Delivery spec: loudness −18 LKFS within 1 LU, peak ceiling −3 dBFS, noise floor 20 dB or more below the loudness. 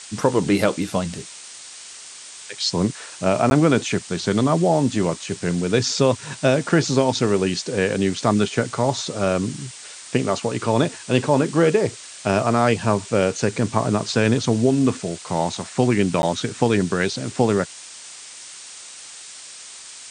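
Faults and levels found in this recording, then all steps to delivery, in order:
number of dropouts 2; longest dropout 11 ms; background noise floor −40 dBFS; target noise floor −41 dBFS; integrated loudness −21.0 LKFS; sample peak −2.5 dBFS; target loudness −18.0 LKFS
→ repair the gap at 0:03.50/0:16.22, 11 ms
broadband denoise 6 dB, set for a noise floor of −40 dBFS
level +3 dB
brickwall limiter −3 dBFS

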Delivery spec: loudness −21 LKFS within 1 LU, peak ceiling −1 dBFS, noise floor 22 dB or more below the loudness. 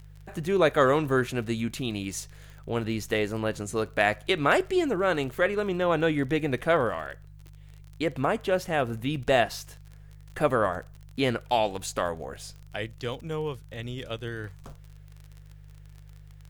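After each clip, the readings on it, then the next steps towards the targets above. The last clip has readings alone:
crackle rate 37 per second; mains hum 50 Hz; hum harmonics up to 150 Hz; level of the hum −45 dBFS; integrated loudness −27.5 LKFS; sample peak −9.0 dBFS; target loudness −21.0 LKFS
→ click removal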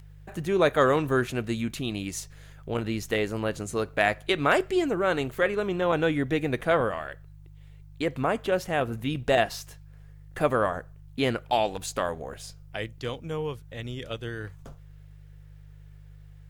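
crackle rate 0.24 per second; mains hum 50 Hz; hum harmonics up to 150 Hz; level of the hum −46 dBFS
→ hum removal 50 Hz, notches 3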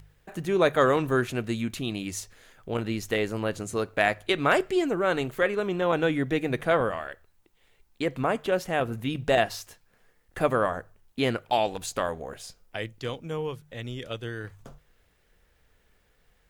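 mains hum none found; integrated loudness −27.5 LKFS; sample peak −9.0 dBFS; target loudness −21.0 LKFS
→ level +6.5 dB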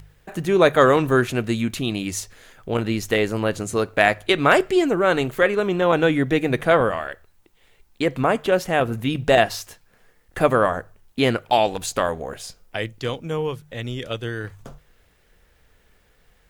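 integrated loudness −21.0 LKFS; sample peak −2.5 dBFS; background noise floor −60 dBFS

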